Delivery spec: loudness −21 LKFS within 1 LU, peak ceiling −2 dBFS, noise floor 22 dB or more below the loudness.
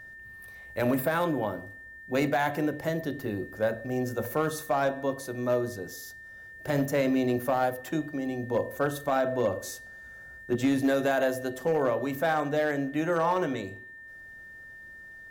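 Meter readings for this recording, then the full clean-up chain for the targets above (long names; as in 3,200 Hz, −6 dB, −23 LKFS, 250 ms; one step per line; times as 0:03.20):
share of clipped samples 0.5%; peaks flattened at −18.5 dBFS; interfering tone 1,800 Hz; level of the tone −44 dBFS; integrated loudness −28.5 LKFS; sample peak −18.5 dBFS; target loudness −21.0 LKFS
→ clipped peaks rebuilt −18.5 dBFS
notch filter 1,800 Hz, Q 30
level +7.5 dB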